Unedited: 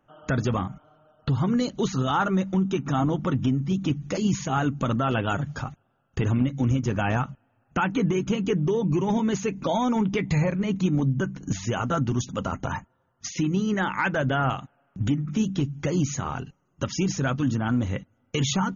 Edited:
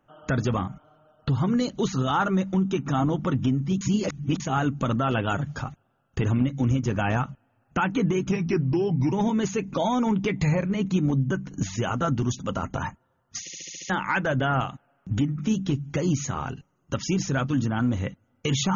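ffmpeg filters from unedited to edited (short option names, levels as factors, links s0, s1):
-filter_complex "[0:a]asplit=12[s0][s1][s2][s3][s4][s5][s6][s7][s8][s9][s10][s11];[s0]atrim=end=3.812[s12];[s1]atrim=start=3.808:end=4.402,asetpts=PTS-STARTPTS,areverse[s13];[s2]atrim=start=4.398:end=8.314[s14];[s3]atrim=start=8.31:end=9.02,asetpts=PTS-STARTPTS,asetrate=38367,aresample=44100[s15];[s4]atrim=start=9.016:end=13.372[s16];[s5]atrim=start=13.298:end=13.372[s17];[s6]atrim=start=13.298:end=13.372[s18];[s7]atrim=start=13.298:end=13.372[s19];[s8]atrim=start=13.298:end=13.372[s20];[s9]atrim=start=13.298:end=13.372[s21];[s10]atrim=start=13.298:end=13.372[s22];[s11]atrim=start=13.788[s23];[s12][s13]acrossfade=d=0.004:c1=hsin:c2=hsin[s24];[s24][s14]acrossfade=d=0.004:c1=hsin:c2=hsin[s25];[s25][s15]acrossfade=d=0.004:c1=hsin:c2=hsin[s26];[s26][s16]acrossfade=d=0.004:c1=hsin:c2=hsin[s27];[s27][s17]acrossfade=d=0.004:c1=hsin:c2=hsin[s28];[s28][s18]acrossfade=d=0.004:c1=hsin:c2=hsin[s29];[s29][s19]acrossfade=d=0.004:c1=hsin:c2=hsin[s30];[s30][s20]acrossfade=d=0.004:c1=hsin:c2=hsin[s31];[s31][s21]acrossfade=d=0.004:c1=hsin:c2=hsin[s32];[s32][s22]acrossfade=d=0.004:c1=hsin:c2=hsin[s33];[s33][s23]acrossfade=d=0.004:c1=hsin:c2=hsin"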